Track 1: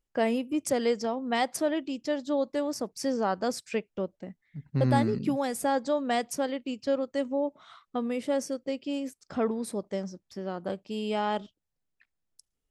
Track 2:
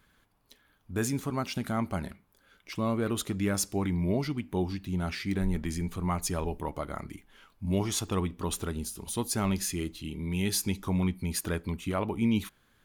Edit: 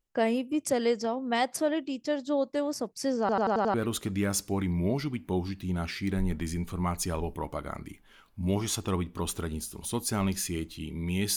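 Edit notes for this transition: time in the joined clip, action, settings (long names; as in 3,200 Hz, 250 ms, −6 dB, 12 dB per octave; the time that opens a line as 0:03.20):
track 1
0:03.20: stutter in place 0.09 s, 6 plays
0:03.74: continue with track 2 from 0:02.98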